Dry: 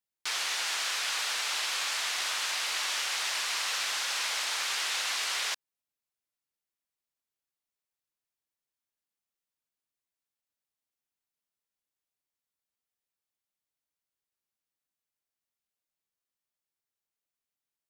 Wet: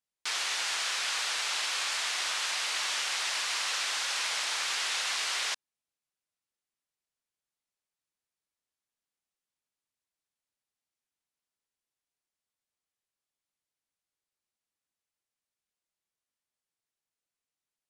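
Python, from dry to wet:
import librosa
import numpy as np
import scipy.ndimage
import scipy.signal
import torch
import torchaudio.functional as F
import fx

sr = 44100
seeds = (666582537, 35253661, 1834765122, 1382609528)

y = scipy.signal.sosfilt(scipy.signal.butter(4, 11000.0, 'lowpass', fs=sr, output='sos'), x)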